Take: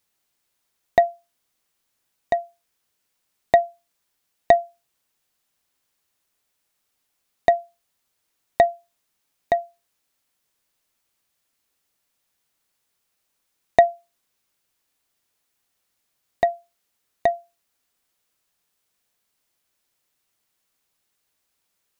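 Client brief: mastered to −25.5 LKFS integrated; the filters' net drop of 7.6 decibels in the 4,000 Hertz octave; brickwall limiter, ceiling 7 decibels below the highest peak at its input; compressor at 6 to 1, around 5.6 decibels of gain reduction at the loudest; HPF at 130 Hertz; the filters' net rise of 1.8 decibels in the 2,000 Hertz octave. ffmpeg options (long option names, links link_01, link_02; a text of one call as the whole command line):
ffmpeg -i in.wav -af "highpass=130,equalizer=frequency=2000:width_type=o:gain=3.5,equalizer=frequency=4000:width_type=o:gain=-9,acompressor=threshold=-16dB:ratio=6,volume=5dB,alimiter=limit=-3.5dB:level=0:latency=1" out.wav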